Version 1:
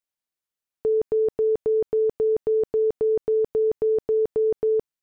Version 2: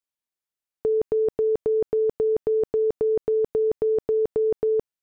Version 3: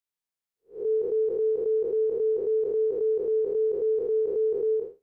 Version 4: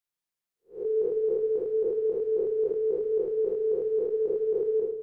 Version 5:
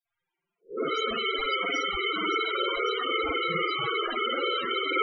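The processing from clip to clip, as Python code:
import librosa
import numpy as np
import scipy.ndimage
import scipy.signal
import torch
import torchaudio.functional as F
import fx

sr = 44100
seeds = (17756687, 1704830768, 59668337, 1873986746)

y1 = fx.level_steps(x, sr, step_db=12)
y1 = y1 * 10.0 ** (3.0 / 20.0)
y2 = fx.spec_blur(y1, sr, span_ms=174.0)
y3 = fx.rider(y2, sr, range_db=10, speed_s=0.5)
y3 = fx.room_shoebox(y3, sr, seeds[0], volume_m3=1800.0, walls='mixed', distance_m=0.88)
y4 = (np.mod(10.0 ** (34.5 / 20.0) * y3 + 1.0, 2.0) - 1.0) / 10.0 ** (34.5 / 20.0)
y4 = fx.rev_spring(y4, sr, rt60_s=1.2, pass_ms=(49,), chirp_ms=75, drr_db=-9.5)
y4 = fx.spec_topn(y4, sr, count=16)
y4 = y4 * 10.0 ** (8.5 / 20.0)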